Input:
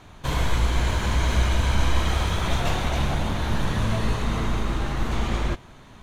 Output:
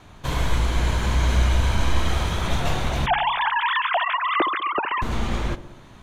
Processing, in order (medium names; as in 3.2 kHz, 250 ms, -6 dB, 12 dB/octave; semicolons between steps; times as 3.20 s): 3.06–5.02 s: formants replaced by sine waves; vibrato 1.2 Hz 7.1 cents; feedback echo behind a low-pass 65 ms, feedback 63%, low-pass 960 Hz, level -13 dB